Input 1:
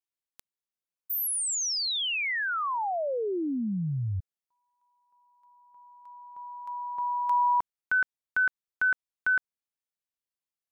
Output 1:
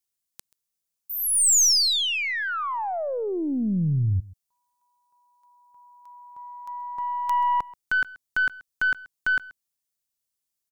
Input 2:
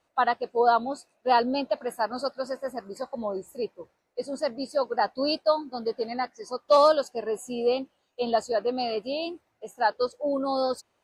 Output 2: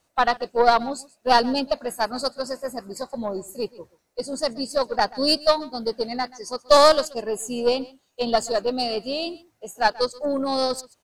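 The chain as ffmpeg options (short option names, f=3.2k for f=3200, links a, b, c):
-filter_complex "[0:a]acrossover=split=9500[a][b];[b]acompressor=threshold=-48dB:ratio=4:attack=1:release=60[c];[a][c]amix=inputs=2:normalize=0,bass=f=250:g=6,treble=f=4k:g=11,aeval=exprs='0.422*(cos(1*acos(clip(val(0)/0.422,-1,1)))-cos(1*PI/2))+0.106*(cos(2*acos(clip(val(0)/0.422,-1,1)))-cos(2*PI/2))+0.015*(cos(7*acos(clip(val(0)/0.422,-1,1)))-cos(7*PI/2))':c=same,aecho=1:1:132:0.0891,volume=3.5dB"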